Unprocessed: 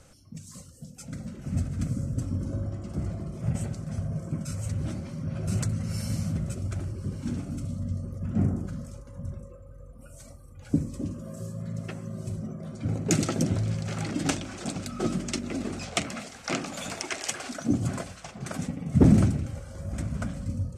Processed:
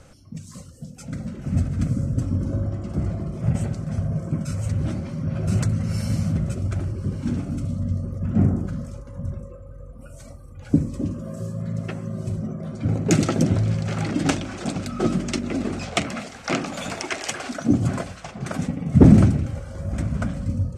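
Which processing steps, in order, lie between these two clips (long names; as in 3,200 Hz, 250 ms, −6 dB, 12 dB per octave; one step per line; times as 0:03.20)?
high-shelf EQ 5,000 Hz −8.5 dB
level +6.5 dB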